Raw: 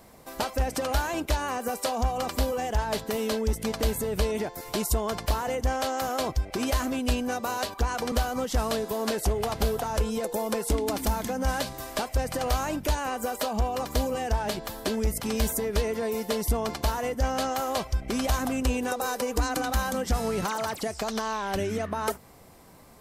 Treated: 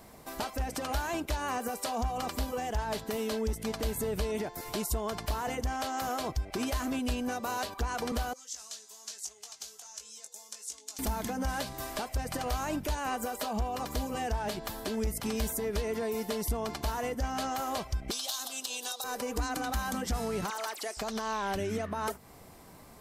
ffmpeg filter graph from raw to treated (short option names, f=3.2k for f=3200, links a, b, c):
-filter_complex "[0:a]asettb=1/sr,asplit=3[a][b][c];[a]atrim=end=8.334[d];[b]atrim=start=8.33:end=10.99,asetpts=PTS-STARTPTS,afade=t=in:d=0.004:c=qsin,afade=t=out:st=2.656:d=0.004:c=qsin,bandpass=f=6.6k:t=q:w=3,asplit=2[e][f];[f]adelay=19,volume=-7dB[g];[e][g]amix=inputs=2:normalize=0,atrim=end_sample=117306[h];[c]atrim=start=10.986[i];[d][h]acrossfade=d=0.004:c1=hsin:c2=qsin[j];[j][i]acrossfade=d=0.004:c1=qsin:c2=hsin,asettb=1/sr,asplit=3[k][l][m];[k]atrim=end=18.114[n];[l]atrim=start=18.11:end=19.04,asetpts=PTS-STARTPTS,afade=t=in:d=0.004:c=qsin,afade=t=out:st=0.926:d=0.004:c=qsin,highpass=720,highshelf=f=2.8k:t=q:w=3:g=9.5,aeval=exprs='0.299*(abs(mod(val(0)/0.299+3,4)-2)-1)':c=same[o];[m]atrim=start=19.036[p];[n][o]acrossfade=d=0.004:c1=hsin:c2=qsin[q];[q][p]acrossfade=d=0.004:c1=qsin:c2=hsin,asettb=1/sr,asplit=3[r][s][t];[r]atrim=end=20.504[u];[s]atrim=start=20.5:end=20.97,asetpts=PTS-STARTPTS,afade=t=in:d=0.004:c=qsin,afade=t=out:st=0.466:d=0.004:c=qsin,highpass=f=340:w=0.5412,highpass=f=340:w=1.3066,equalizer=f=490:t=o:w=2.2:g=-6[v];[t]atrim=start=20.966[w];[u][v]acrossfade=d=0.004:c1=hsin:c2=qsin[x];[x][w]acrossfade=d=0.004:c1=qsin:c2=hsin,bandreject=f=520:w=16,alimiter=limit=-23.5dB:level=0:latency=1:release=251"